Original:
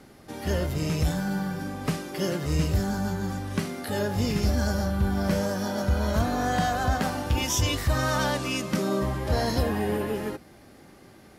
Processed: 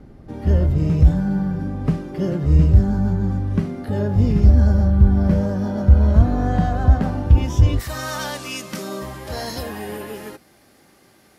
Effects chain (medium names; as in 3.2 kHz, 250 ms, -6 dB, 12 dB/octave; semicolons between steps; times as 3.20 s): tilt EQ -4 dB/octave, from 7.79 s +1.5 dB/octave; trim -1.5 dB